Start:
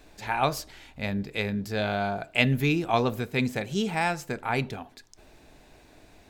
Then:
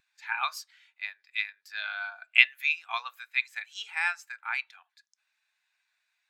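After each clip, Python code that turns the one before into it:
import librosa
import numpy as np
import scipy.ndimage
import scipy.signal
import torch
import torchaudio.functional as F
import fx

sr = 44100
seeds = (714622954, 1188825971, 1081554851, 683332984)

y = scipy.signal.sosfilt(scipy.signal.butter(4, 1200.0, 'highpass', fs=sr, output='sos'), x)
y = fx.spectral_expand(y, sr, expansion=1.5)
y = y * librosa.db_to_amplitude(5.0)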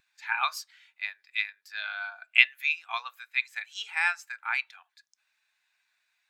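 y = fx.rider(x, sr, range_db=10, speed_s=2.0)
y = y * librosa.db_to_amplitude(-1.5)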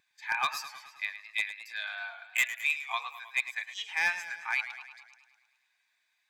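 y = np.clip(x, -10.0 ** (-18.5 / 20.0), 10.0 ** (-18.5 / 20.0))
y = fx.notch_comb(y, sr, f0_hz=1400.0)
y = fx.echo_warbled(y, sr, ms=106, feedback_pct=61, rate_hz=2.8, cents=96, wet_db=-12.0)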